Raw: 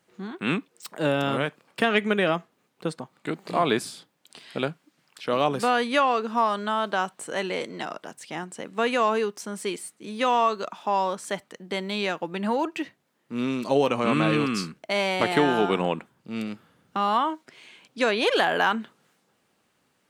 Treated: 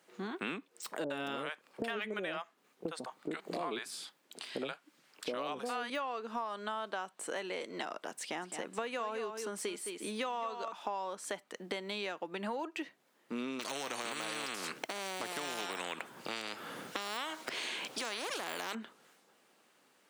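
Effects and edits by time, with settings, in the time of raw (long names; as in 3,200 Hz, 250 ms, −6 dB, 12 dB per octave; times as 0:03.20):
0:01.04–0:05.90: multiband delay without the direct sound lows, highs 60 ms, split 650 Hz
0:08.20–0:10.72: single-tap delay 213 ms −10.5 dB
0:13.59–0:18.75: every bin compressed towards the loudest bin 4 to 1
whole clip: de-essing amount 65%; high-pass filter 280 Hz 12 dB per octave; downward compressor 6 to 1, threshold −38 dBFS; level +2 dB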